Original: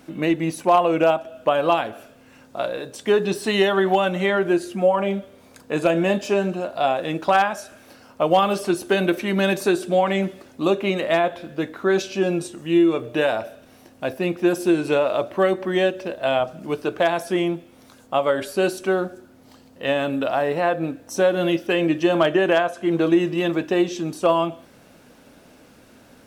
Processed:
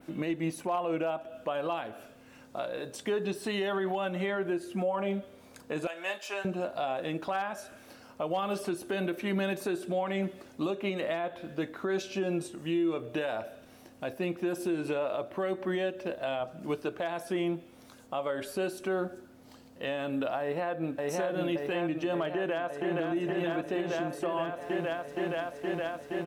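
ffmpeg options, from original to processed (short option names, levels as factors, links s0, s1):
-filter_complex "[0:a]asettb=1/sr,asplit=3[s0][s1][s2];[s0]atrim=end=5.874[s3];[s1]atrim=start=5.87:end=6.45,asetpts=PTS-STARTPTS,afade=t=in:d=0.004:c=qsin,afade=t=out:st=0.576:d=0.004:c=qsin,highpass=990[s4];[s2]atrim=start=6.446[s5];[s3][s4]acrossfade=d=0.004:c1=hsin:c2=qsin[s6];[s6][s5]acrossfade=d=0.004:c1=qsin:c2=hsin,asplit=2[s7][s8];[s8]afade=t=in:st=20.41:d=0.01,afade=t=out:st=20.99:d=0.01,aecho=0:1:570|1140|1710|2280|2850|3420|3990|4560|5130|5700|6270|6840:0.891251|0.623876|0.436713|0.305699|0.213989|0.149793|0.104855|0.0733983|0.0513788|0.0359652|0.0251756|0.0176229[s9];[s7][s9]amix=inputs=2:normalize=0,asplit=2[s10][s11];[s11]afade=t=in:st=22.34:d=0.01,afade=t=out:st=22.98:d=0.01,aecho=0:1:470|940|1410|1880|2350|2820|3290|3760|4230|4700|5170|5640:0.668344|0.568092|0.482878|0.410447|0.34888|0.296548|0.252066|0.214256|0.182117|0.1548|0.13158|0.111843[s12];[s10][s12]amix=inputs=2:normalize=0,adynamicequalizer=threshold=0.00562:dfrequency=6000:dqfactor=0.83:tfrequency=6000:tqfactor=0.83:attack=5:release=100:ratio=0.375:range=2.5:mode=cutabove:tftype=bell,alimiter=limit=0.126:level=0:latency=1:release=245,volume=0.596"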